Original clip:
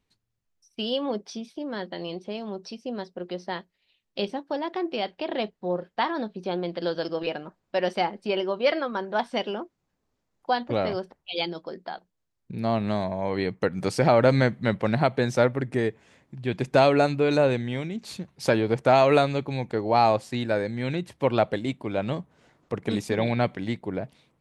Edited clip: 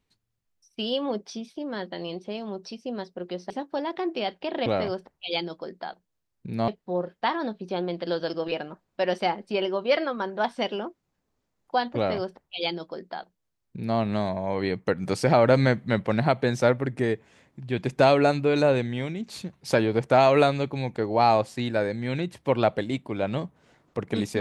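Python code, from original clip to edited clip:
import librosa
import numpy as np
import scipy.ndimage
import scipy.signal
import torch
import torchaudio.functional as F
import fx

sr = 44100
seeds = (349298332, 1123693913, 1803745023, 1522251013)

y = fx.edit(x, sr, fx.cut(start_s=3.5, length_s=0.77),
    fx.duplicate(start_s=10.71, length_s=2.02, to_s=5.43), tone=tone)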